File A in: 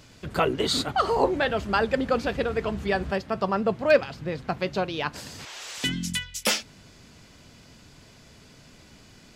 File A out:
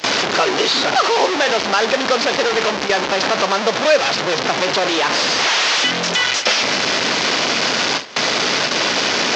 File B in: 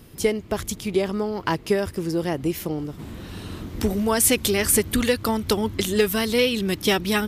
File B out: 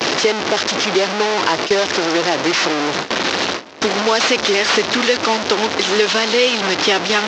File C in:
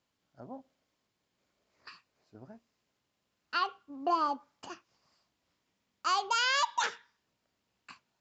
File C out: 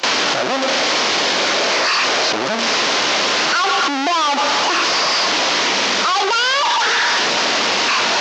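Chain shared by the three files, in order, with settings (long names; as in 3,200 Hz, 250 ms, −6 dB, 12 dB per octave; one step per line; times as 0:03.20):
linear delta modulator 32 kbit/s, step −19 dBFS
high-pass filter 400 Hz 12 dB per octave
in parallel at 0 dB: brickwall limiter −16.5 dBFS
on the sum: noise gate with hold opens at −12 dBFS
multiband upward and downward compressor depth 40%
level +3.5 dB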